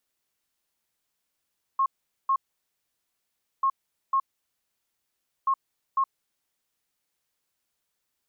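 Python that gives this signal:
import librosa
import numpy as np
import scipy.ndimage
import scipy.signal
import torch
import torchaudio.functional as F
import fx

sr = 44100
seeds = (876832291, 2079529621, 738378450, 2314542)

y = fx.beep_pattern(sr, wave='sine', hz=1080.0, on_s=0.07, off_s=0.43, beeps=2, pause_s=1.27, groups=3, level_db=-19.5)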